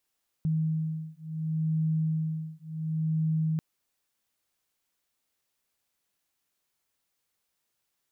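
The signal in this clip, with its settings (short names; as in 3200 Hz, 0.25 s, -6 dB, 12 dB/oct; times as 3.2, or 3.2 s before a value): beating tones 158 Hz, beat 0.7 Hz, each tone -29.5 dBFS 3.14 s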